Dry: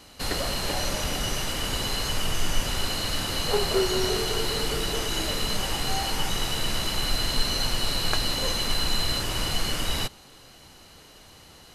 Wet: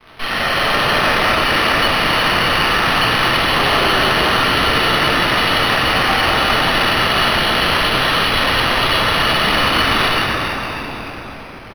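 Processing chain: high-pass 1.3 kHz 12 dB/octave; treble shelf 4.9 kHz +4 dB; comb 1.6 ms, depth 39%; fuzz box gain 48 dB, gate -44 dBFS; distance through air 290 m; on a send: frequency-shifting echo 246 ms, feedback 60%, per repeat -98 Hz, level -6 dB; on the sum: simulated room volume 220 m³, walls hard, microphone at 1.5 m; decimation joined by straight lines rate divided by 6×; trim -2 dB

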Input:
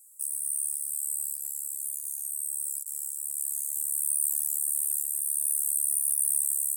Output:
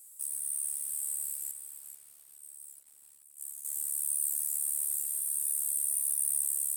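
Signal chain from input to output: companding laws mixed up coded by mu; 1.51–3.65 s: gate -28 dBFS, range -22 dB; bit-crushed delay 436 ms, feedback 35%, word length 8-bit, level -9 dB; trim -5 dB

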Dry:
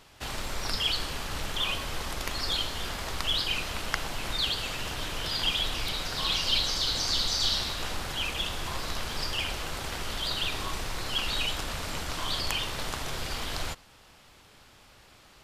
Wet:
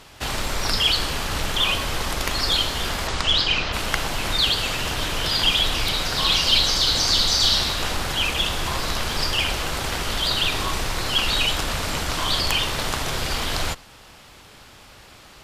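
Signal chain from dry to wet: 3.07–3.72 s: low-pass 9.5 kHz -> 5 kHz 24 dB/octave; Chebyshev shaper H 5 -16 dB, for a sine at -6.5 dBFS; trim +4 dB

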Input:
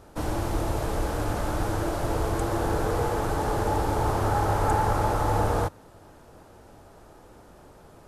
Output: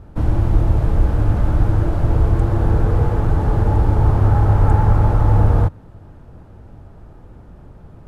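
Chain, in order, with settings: tone controls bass +15 dB, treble -12 dB

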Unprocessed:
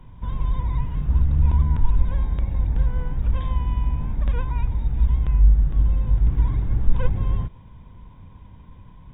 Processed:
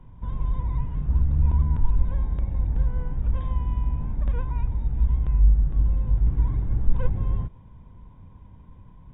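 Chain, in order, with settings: treble shelf 2.2 kHz -11.5 dB; trim -2.5 dB

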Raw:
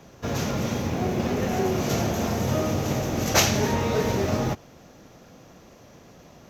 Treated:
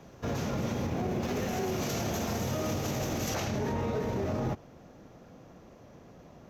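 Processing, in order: treble shelf 2.1 kHz -5 dB, from 1.23 s +3.5 dB, from 3.35 s -10.5 dB; peak limiter -21.5 dBFS, peak gain reduction 11.5 dB; trim -2 dB

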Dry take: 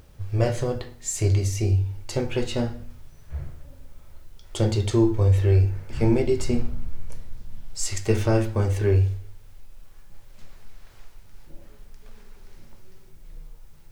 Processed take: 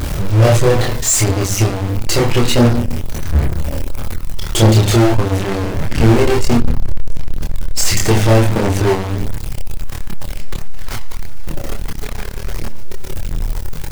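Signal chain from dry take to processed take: power-law waveshaper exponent 0.35; chorus voices 2, 0.75 Hz, delay 26 ms, depth 1.1 ms; trim +5.5 dB

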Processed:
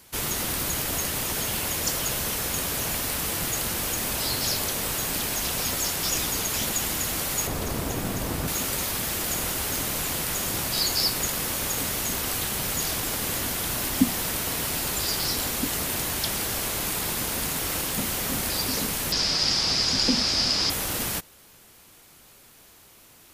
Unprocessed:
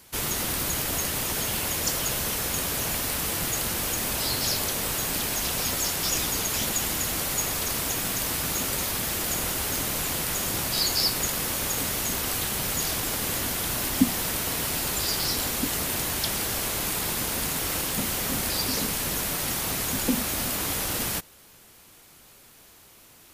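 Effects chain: 7.47–8.48 s: tilt shelf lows +6.5 dB, about 1.1 kHz; 19.12–20.70 s: resonant low-pass 5 kHz, resonance Q 10

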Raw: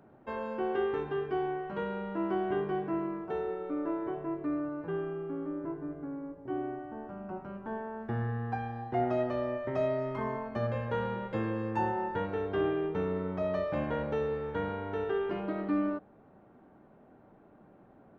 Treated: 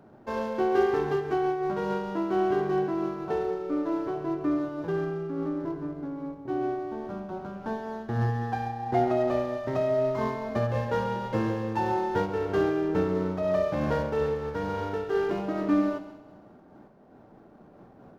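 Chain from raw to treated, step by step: median filter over 15 samples; on a send: multi-head delay 67 ms, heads first and second, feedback 59%, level -14 dB; on the sum: random flutter of the level, depth 60%; trim +8 dB

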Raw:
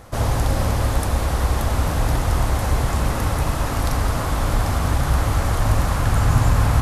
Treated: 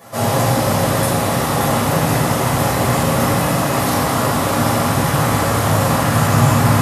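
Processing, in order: high-pass 130 Hz 24 dB/octave; treble shelf 10 kHz +9 dB; reverberation RT60 1.0 s, pre-delay 6 ms, DRR -10 dB; trim -5 dB

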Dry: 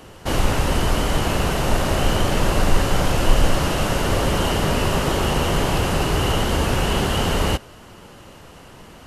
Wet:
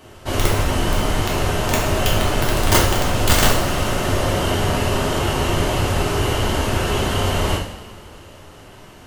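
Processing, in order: crackle 12 per s -47 dBFS; integer overflow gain 7.5 dB; two-slope reverb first 0.61 s, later 2.8 s, from -18 dB, DRR -3.5 dB; trim -4.5 dB

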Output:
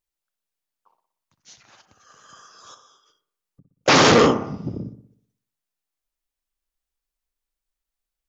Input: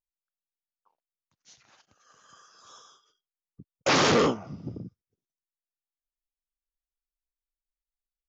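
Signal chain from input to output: 2.74–3.88 s: compression 6:1, threshold -60 dBFS, peak gain reduction 30.5 dB; on a send: feedback echo behind a low-pass 60 ms, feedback 51%, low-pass 1.4 kHz, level -9 dB; on the sum: trim +7.5 dB

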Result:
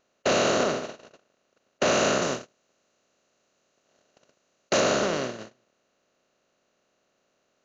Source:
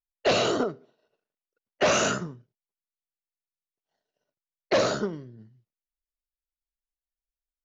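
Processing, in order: spectral levelling over time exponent 0.2; gate -22 dBFS, range -34 dB; 2.22–4.80 s: treble shelf 6.9 kHz +10 dB; trim -6 dB

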